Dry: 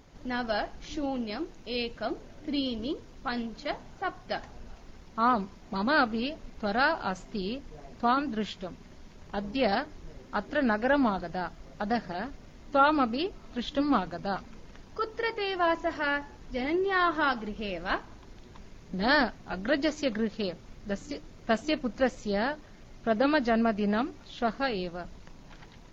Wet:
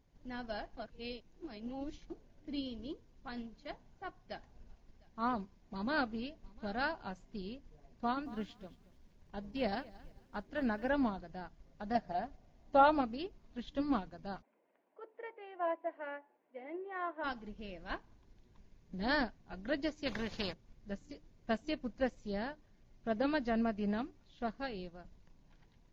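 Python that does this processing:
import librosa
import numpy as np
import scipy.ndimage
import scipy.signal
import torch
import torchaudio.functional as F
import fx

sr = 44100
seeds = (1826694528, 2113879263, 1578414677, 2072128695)

y = fx.echo_single(x, sr, ms=703, db=-19.0, at=(4.24, 6.88))
y = fx.echo_crushed(y, sr, ms=226, feedback_pct=35, bits=8, wet_db=-14.5, at=(7.91, 10.89))
y = fx.peak_eq(y, sr, hz=710.0, db=12.0, octaves=0.48, at=(11.95, 13.01))
y = fx.cabinet(y, sr, low_hz=340.0, low_slope=24, high_hz=2200.0, hz=(410.0, 610.0, 1200.0, 1700.0), db=(-5, 5, -4, -5), at=(14.41, 17.23), fade=0.02)
y = fx.spectral_comp(y, sr, ratio=2.0, at=(20.05, 20.52), fade=0.02)
y = fx.edit(y, sr, fx.reverse_span(start_s=0.77, length_s=1.33), tone=tone)
y = fx.low_shelf(y, sr, hz=210.0, db=7.0)
y = fx.notch(y, sr, hz=1300.0, q=11.0)
y = fx.upward_expand(y, sr, threshold_db=-41.0, expansion=1.5)
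y = F.gain(torch.from_numpy(y), -6.5).numpy()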